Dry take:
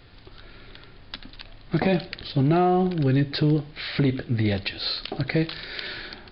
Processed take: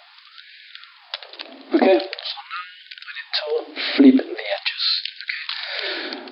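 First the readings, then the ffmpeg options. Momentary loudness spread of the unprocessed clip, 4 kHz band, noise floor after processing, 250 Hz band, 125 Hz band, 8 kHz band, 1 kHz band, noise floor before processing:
15 LU, +8.0 dB, −49 dBFS, +5.0 dB, below −30 dB, can't be measured, −0.5 dB, −48 dBFS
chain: -filter_complex "[0:a]asplit=2[link_01][link_02];[link_02]alimiter=limit=-19.5dB:level=0:latency=1:release=29,volume=3dB[link_03];[link_01][link_03]amix=inputs=2:normalize=0,equalizer=frequency=250:width_type=o:width=0.67:gain=10,equalizer=frequency=630:width_type=o:width=0.67:gain=5,equalizer=frequency=1600:width_type=o:width=0.67:gain=-3,afftfilt=real='re*gte(b*sr/1024,220*pow(1500/220,0.5+0.5*sin(2*PI*0.44*pts/sr)))':imag='im*gte(b*sr/1024,220*pow(1500/220,0.5+0.5*sin(2*PI*0.44*pts/sr)))':win_size=1024:overlap=0.75,volume=1dB"

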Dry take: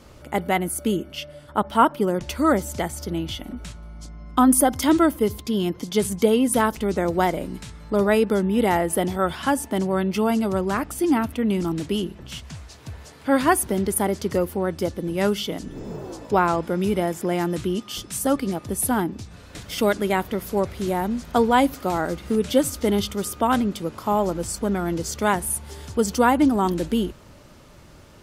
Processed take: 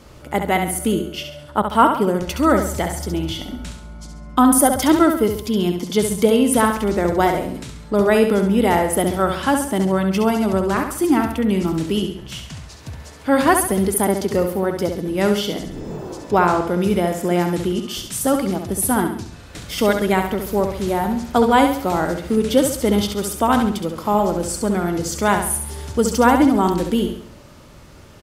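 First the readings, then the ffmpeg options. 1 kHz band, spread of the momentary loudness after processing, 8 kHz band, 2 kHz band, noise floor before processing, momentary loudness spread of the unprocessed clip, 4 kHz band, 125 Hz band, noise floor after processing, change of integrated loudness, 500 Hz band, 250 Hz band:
+4.0 dB, 14 LU, +4.0 dB, +4.0 dB, −47 dBFS, 14 LU, +4.0 dB, +4.5 dB, −41 dBFS, +4.0 dB, +4.0 dB, +4.0 dB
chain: -af "aecho=1:1:68|136|204|272|340:0.473|0.203|0.0875|0.0376|0.0162,volume=3dB"

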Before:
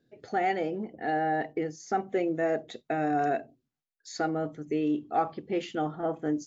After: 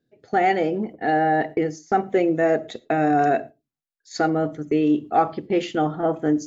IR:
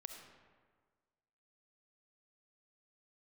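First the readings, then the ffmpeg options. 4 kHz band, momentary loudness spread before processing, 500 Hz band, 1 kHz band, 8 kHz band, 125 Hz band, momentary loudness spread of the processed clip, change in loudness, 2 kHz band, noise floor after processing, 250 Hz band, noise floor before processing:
+7.0 dB, 6 LU, +8.5 dB, +8.0 dB, can't be measured, +9.0 dB, 6 LU, +8.5 dB, +8.0 dB, below −85 dBFS, +8.5 dB, −84 dBFS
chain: -filter_complex "[0:a]agate=range=-12dB:threshold=-42dB:ratio=16:detection=peak,asplit=2[link_01][link_02];[1:a]atrim=start_sample=2205,afade=type=out:start_time=0.17:duration=0.01,atrim=end_sample=7938,lowshelf=frequency=440:gain=6.5[link_03];[link_02][link_03]afir=irnorm=-1:irlink=0,volume=-9.5dB[link_04];[link_01][link_04]amix=inputs=2:normalize=0,volume=6.5dB"

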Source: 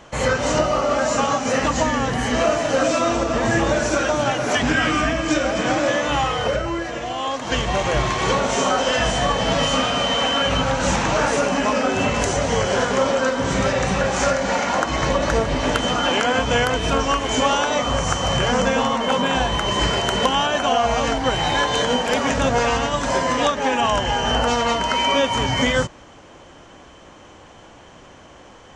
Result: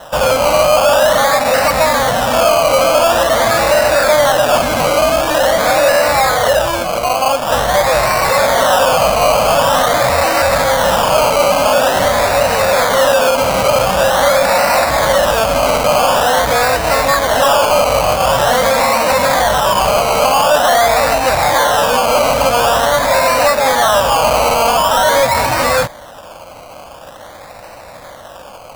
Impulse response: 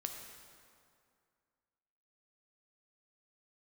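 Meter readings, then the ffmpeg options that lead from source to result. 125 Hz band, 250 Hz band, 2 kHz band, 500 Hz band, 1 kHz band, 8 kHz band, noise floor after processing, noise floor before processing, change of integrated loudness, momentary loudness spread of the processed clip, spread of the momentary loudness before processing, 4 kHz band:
+1.0 dB, −1.5 dB, +6.5 dB, +9.5 dB, +9.0 dB, +8.0 dB, −34 dBFS, −45 dBFS, +8.0 dB, 2 LU, 2 LU, +4.5 dB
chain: -af "acrusher=samples=19:mix=1:aa=0.000001:lfo=1:lforange=11.4:lforate=0.46,apsyclip=20dB,lowshelf=frequency=470:width_type=q:width=3:gain=-6,volume=-9.5dB"

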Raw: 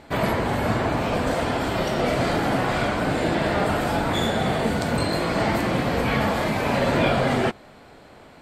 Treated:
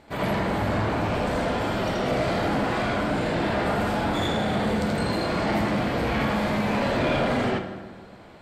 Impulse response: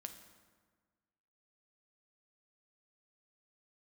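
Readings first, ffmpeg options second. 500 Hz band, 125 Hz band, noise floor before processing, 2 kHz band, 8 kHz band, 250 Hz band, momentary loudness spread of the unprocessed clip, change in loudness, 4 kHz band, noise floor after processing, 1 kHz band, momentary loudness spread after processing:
−2.5 dB, −2.0 dB, −48 dBFS, −2.5 dB, −5.5 dB, −1.0 dB, 3 LU, −2.0 dB, −2.5 dB, −45 dBFS, −2.0 dB, 2 LU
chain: -filter_complex "[0:a]asplit=2[link_01][link_02];[1:a]atrim=start_sample=2205,lowpass=5600,adelay=80[link_03];[link_02][link_03]afir=irnorm=-1:irlink=0,volume=8dB[link_04];[link_01][link_04]amix=inputs=2:normalize=0,asoftclip=type=tanh:threshold=-10.5dB,volume=-6dB"

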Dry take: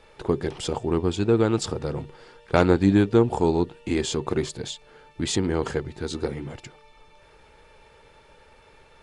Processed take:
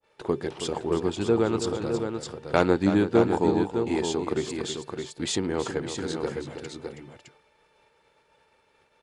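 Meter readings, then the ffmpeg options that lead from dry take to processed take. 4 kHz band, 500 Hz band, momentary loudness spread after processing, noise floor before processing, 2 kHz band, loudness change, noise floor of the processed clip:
−1.5 dB, −1.0 dB, 14 LU, −54 dBFS, −1.0 dB, −2.5 dB, −66 dBFS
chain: -filter_complex "[0:a]agate=range=-33dB:threshold=-45dB:ratio=3:detection=peak,highpass=frequency=200:poles=1,asplit=2[link_01][link_02];[link_02]aecho=0:1:323|612:0.316|0.473[link_03];[link_01][link_03]amix=inputs=2:normalize=0,adynamicequalizer=threshold=0.0178:dfrequency=1500:dqfactor=0.7:tfrequency=1500:tqfactor=0.7:attack=5:release=100:ratio=0.375:range=1.5:mode=cutabove:tftype=highshelf,volume=-1.5dB"

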